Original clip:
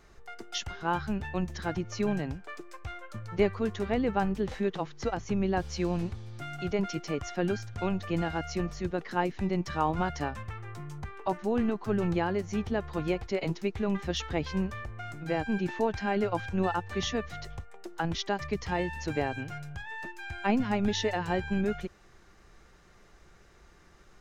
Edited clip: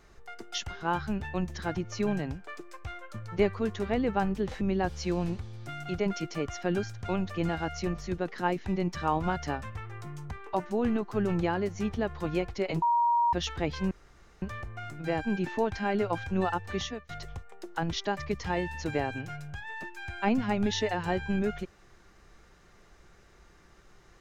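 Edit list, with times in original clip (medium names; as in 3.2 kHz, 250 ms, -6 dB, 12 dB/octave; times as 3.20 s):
4.61–5.34 s: delete
13.55–14.06 s: bleep 946 Hz -21.5 dBFS
14.64 s: insert room tone 0.51 s
16.95–17.31 s: fade out, to -23.5 dB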